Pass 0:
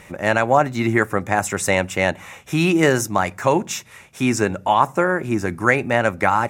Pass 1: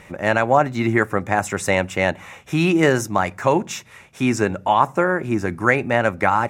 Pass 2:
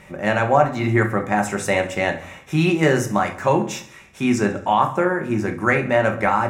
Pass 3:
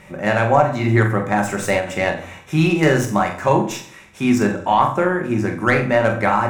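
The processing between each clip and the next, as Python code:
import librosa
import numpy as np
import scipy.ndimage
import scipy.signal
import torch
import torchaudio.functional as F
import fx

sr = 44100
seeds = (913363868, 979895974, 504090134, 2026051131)

y1 = fx.high_shelf(x, sr, hz=5900.0, db=-7.0)
y2 = fx.echo_feedback(y1, sr, ms=68, feedback_pct=56, wet_db=-17.0)
y2 = fx.room_shoebox(y2, sr, seeds[0], volume_m3=290.0, walls='furnished', distance_m=1.1)
y2 = y2 * 10.0 ** (-2.5 / 20.0)
y3 = fx.tracing_dist(y2, sr, depth_ms=0.029)
y3 = fx.room_flutter(y3, sr, wall_m=7.6, rt60_s=0.33)
y3 = fx.end_taper(y3, sr, db_per_s=130.0)
y3 = y3 * 10.0 ** (1.0 / 20.0)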